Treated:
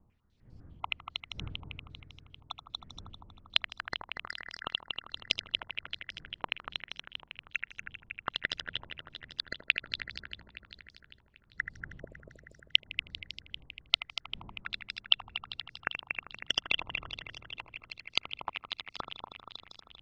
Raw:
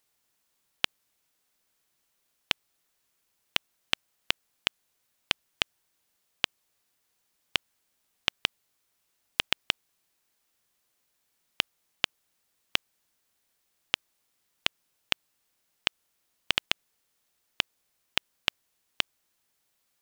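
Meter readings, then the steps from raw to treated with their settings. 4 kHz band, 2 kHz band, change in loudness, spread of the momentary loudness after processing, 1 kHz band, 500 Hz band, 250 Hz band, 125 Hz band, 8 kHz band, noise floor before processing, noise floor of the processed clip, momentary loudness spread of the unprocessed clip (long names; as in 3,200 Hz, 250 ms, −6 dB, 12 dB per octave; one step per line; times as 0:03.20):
−1.5 dB, −1.5 dB, −3.5 dB, 18 LU, −1.0 dB, −5.0 dB, −4.0 dB, +2.5 dB, −10.0 dB, −76 dBFS, −67 dBFS, 3 LU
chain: time-frequency cells dropped at random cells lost 47%
wind on the microphone 120 Hz −53 dBFS
on a send: echo machine with several playback heads 79 ms, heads first and third, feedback 74%, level −9 dB
on the sum: low-pass on a step sequencer 10 Hz 980–5,100 Hz
level −5 dB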